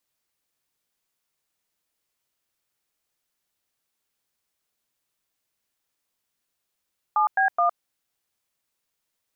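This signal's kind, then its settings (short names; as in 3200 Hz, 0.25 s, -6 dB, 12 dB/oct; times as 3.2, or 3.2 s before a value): DTMF "7B1", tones 0.111 s, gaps 0.101 s, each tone -20 dBFS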